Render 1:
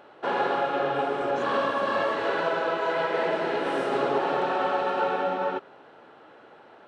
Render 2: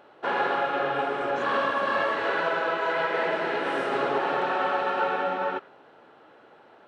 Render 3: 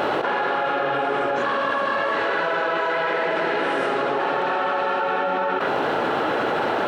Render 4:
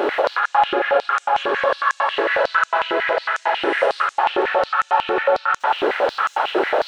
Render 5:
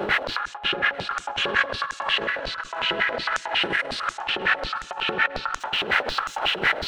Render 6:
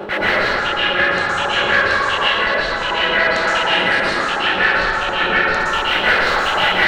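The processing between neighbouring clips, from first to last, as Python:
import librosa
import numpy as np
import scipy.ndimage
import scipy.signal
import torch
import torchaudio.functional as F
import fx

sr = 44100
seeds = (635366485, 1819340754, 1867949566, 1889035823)

y1 = fx.dynamic_eq(x, sr, hz=1800.0, q=0.79, threshold_db=-41.0, ratio=4.0, max_db=6)
y1 = y1 * librosa.db_to_amplitude(-2.5)
y2 = fx.env_flatten(y1, sr, amount_pct=100)
y3 = y2 + 10.0 ** (-4.0 / 20.0) * np.pad(y2, (int(185 * sr / 1000.0), 0))[:len(y2)]
y3 = fx.filter_held_highpass(y3, sr, hz=11.0, low_hz=370.0, high_hz=6700.0)
y3 = y3 * librosa.db_to_amplitude(-1.5)
y4 = fx.octave_divider(y3, sr, octaves=1, level_db=-2.0)
y4 = fx.over_compress(y4, sr, threshold_db=-24.0, ratio=-0.5)
y4 = y4 + 10.0 ** (-23.0 / 20.0) * np.pad(y4, (int(839 * sr / 1000.0), 0))[:len(y4)]
y5 = fx.rev_plate(y4, sr, seeds[0], rt60_s=2.5, hf_ratio=0.4, predelay_ms=105, drr_db=-10.0)
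y5 = y5 * librosa.db_to_amplitude(-1.0)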